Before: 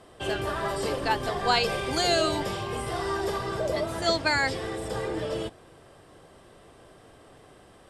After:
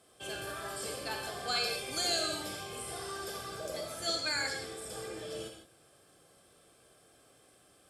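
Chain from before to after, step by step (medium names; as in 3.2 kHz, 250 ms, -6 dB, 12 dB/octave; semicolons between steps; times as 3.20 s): pre-emphasis filter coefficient 0.8; comb of notches 960 Hz; reverberation, pre-delay 29 ms, DRR 2.5 dB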